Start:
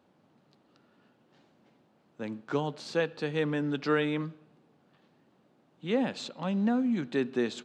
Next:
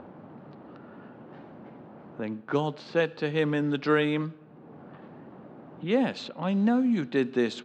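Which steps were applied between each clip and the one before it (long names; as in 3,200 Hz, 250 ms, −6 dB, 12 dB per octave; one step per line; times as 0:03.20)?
upward compression, threshold −35 dBFS
low-pass that shuts in the quiet parts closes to 1,200 Hz, open at −24 dBFS
level +3.5 dB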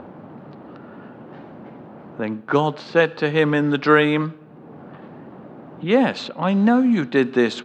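dynamic equaliser 1,200 Hz, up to +5 dB, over −43 dBFS, Q 0.79
level +7 dB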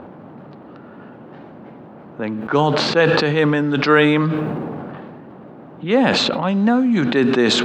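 level that may fall only so fast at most 22 dB per second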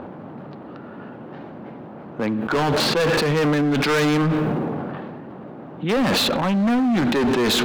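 hard clipping −19 dBFS, distortion −6 dB
level +2 dB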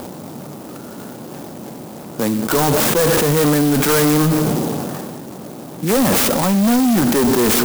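converter with an unsteady clock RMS 0.1 ms
level +4.5 dB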